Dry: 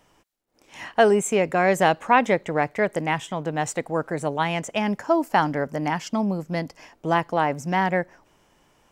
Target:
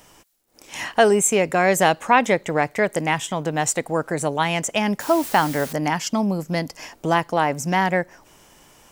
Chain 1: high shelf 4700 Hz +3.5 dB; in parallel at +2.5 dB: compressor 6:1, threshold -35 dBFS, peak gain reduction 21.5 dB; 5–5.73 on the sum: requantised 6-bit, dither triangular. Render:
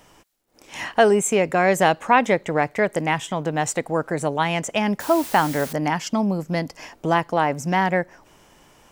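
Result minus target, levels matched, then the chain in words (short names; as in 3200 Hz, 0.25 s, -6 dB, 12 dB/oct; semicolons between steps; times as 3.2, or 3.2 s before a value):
8000 Hz band -4.5 dB
high shelf 4700 Hz +11 dB; in parallel at +2.5 dB: compressor 6:1, threshold -35 dBFS, peak gain reduction 22 dB; 5–5.73 on the sum: requantised 6-bit, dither triangular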